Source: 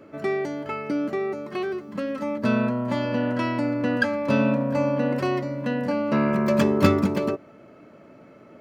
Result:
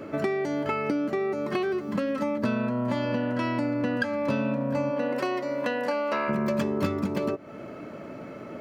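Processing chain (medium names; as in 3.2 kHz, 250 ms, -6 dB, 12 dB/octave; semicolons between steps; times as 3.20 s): 4.90–6.28 s: high-pass 270 Hz -> 650 Hz 12 dB/octave; compression 6:1, threshold -34 dBFS, peak gain reduction 20.5 dB; trim +9 dB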